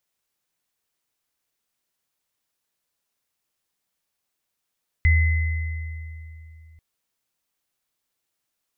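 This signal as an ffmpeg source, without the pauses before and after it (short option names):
-f lavfi -i "aevalsrc='0.224*pow(10,-3*t/3.06)*sin(2*PI*80.2*t)+0.1*pow(10,-3*t/2.29)*sin(2*PI*2040*t)':d=1.74:s=44100"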